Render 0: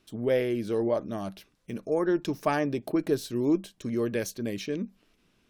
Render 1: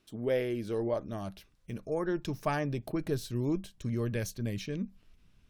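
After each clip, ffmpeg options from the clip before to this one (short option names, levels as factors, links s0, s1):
-af "asubboost=boost=7.5:cutoff=120,volume=0.631"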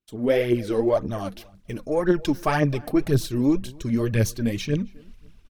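-filter_complex "[0:a]asplit=2[s0][s1];[s1]adelay=267,lowpass=f=2300:p=1,volume=0.0794,asplit=2[s2][s3];[s3]adelay=267,lowpass=f=2300:p=1,volume=0.25[s4];[s0][s2][s4]amix=inputs=3:normalize=0,aphaser=in_gain=1:out_gain=1:delay=4.3:decay=0.58:speed=1.9:type=triangular,agate=range=0.0224:threshold=0.00251:ratio=3:detection=peak,volume=2.51"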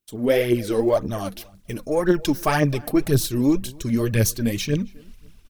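-af "crystalizer=i=1.5:c=0,volume=1.19"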